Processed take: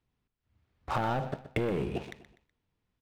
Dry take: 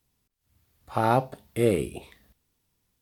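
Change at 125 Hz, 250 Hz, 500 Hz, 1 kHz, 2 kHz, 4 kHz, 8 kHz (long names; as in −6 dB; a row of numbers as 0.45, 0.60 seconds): −4.5, −6.0, −7.5, −6.5, −2.0, −3.0, −13.5 decibels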